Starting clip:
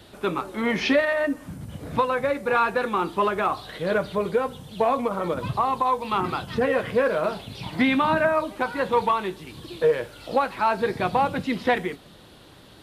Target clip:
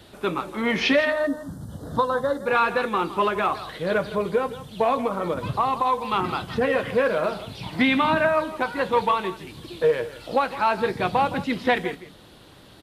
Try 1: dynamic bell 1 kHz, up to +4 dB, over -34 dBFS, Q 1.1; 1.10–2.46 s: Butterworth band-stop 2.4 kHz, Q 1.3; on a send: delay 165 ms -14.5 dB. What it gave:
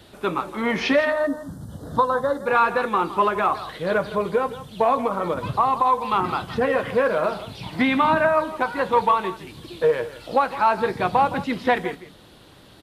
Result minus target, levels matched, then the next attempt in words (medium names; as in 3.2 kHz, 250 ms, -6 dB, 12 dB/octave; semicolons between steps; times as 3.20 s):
4 kHz band -4.0 dB
dynamic bell 3.1 kHz, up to +4 dB, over -34 dBFS, Q 1.1; 1.10–2.46 s: Butterworth band-stop 2.4 kHz, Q 1.3; on a send: delay 165 ms -14.5 dB